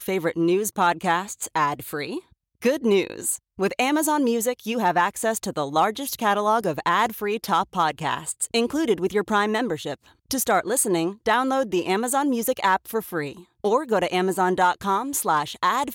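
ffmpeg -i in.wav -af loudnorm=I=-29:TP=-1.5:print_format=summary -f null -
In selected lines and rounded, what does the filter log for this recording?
Input Integrated:    -23.2 LUFS
Input True Peak:      -8.7 dBTP
Input LRA:             1.0 LU
Input Threshold:     -33.4 LUFS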